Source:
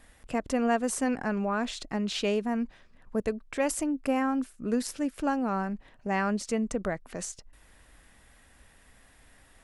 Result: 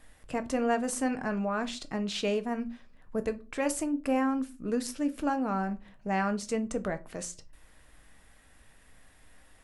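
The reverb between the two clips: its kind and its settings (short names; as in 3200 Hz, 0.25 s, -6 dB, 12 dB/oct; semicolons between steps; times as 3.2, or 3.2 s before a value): shoebox room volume 130 m³, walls furnished, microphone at 0.51 m; gain -2 dB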